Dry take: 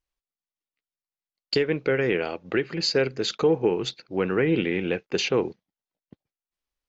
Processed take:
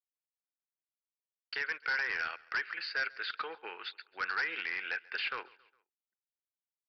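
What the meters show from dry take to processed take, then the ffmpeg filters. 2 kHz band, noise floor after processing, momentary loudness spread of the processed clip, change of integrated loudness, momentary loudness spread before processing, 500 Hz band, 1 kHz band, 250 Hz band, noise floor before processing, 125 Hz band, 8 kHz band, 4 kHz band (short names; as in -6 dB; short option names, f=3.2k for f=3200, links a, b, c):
-1.0 dB, under -85 dBFS, 10 LU, -10.5 dB, 5 LU, -26.5 dB, -4.5 dB, -32.5 dB, under -85 dBFS, under -35 dB, n/a, -11.0 dB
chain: -filter_complex "[0:a]highpass=f=1.5k:t=q:w=3.8,anlmdn=0.01,acrossover=split=2600[a][b];[b]acompressor=threshold=-35dB:ratio=4:attack=1:release=60[c];[a][c]amix=inputs=2:normalize=0,aresample=11025,asoftclip=type=hard:threshold=-22.5dB,aresample=44100,aecho=1:1:137|274|411:0.0668|0.0327|0.016,volume=-5.5dB"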